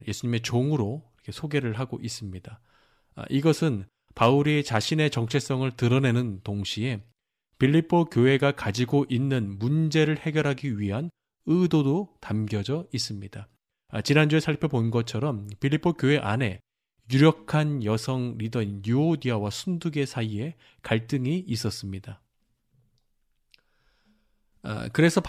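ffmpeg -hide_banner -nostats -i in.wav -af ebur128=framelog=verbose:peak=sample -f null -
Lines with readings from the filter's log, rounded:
Integrated loudness:
  I:         -25.6 LUFS
  Threshold: -36.4 LUFS
Loudness range:
  LRA:         6.9 LU
  Threshold: -46.4 LUFS
  LRA low:   -31.2 LUFS
  LRA high:  -24.3 LUFS
Sample peak:
  Peak:       -7.5 dBFS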